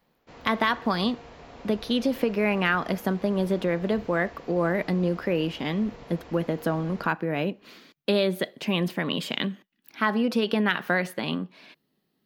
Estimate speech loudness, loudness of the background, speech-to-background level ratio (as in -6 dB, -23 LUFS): -26.5 LUFS, -46.5 LUFS, 20.0 dB